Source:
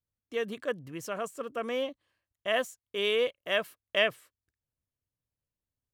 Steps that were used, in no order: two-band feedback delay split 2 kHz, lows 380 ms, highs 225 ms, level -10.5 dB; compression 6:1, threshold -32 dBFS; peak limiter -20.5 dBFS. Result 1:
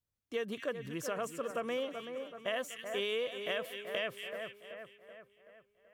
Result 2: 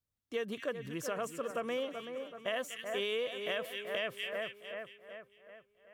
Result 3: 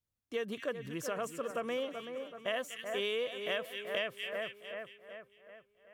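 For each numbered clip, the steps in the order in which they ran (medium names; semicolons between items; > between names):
peak limiter > two-band feedback delay > compression; two-band feedback delay > peak limiter > compression; two-band feedback delay > compression > peak limiter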